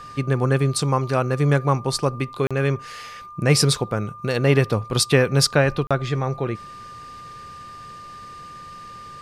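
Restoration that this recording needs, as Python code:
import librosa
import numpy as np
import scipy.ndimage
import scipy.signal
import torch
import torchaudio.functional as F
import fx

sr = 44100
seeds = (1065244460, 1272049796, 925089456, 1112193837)

y = fx.notch(x, sr, hz=1200.0, q=30.0)
y = fx.fix_interpolate(y, sr, at_s=(2.47, 5.87), length_ms=36.0)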